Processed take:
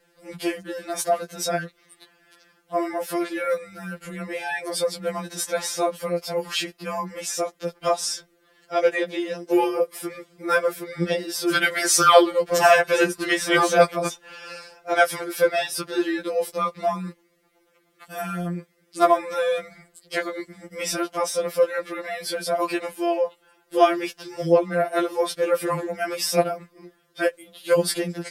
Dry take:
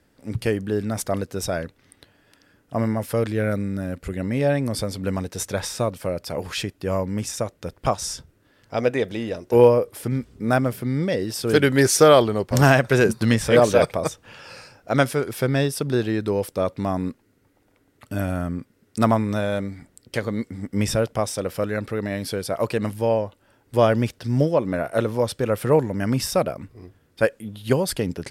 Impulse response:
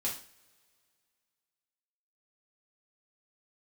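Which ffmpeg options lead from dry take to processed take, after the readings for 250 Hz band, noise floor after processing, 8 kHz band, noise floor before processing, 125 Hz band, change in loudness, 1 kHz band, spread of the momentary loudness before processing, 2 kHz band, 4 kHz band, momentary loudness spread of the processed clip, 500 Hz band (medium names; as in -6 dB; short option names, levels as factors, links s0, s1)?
-5.0 dB, -64 dBFS, +2.0 dB, -63 dBFS, -13.5 dB, -1.0 dB, +3.5 dB, 13 LU, +2.5 dB, +2.5 dB, 14 LU, -1.5 dB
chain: -af "bass=f=250:g=-12,treble=f=4000:g=-1,bandreject=f=890:w=12,afftfilt=real='re*2.83*eq(mod(b,8),0)':imag='im*2.83*eq(mod(b,8),0)':win_size=2048:overlap=0.75,volume=1.78"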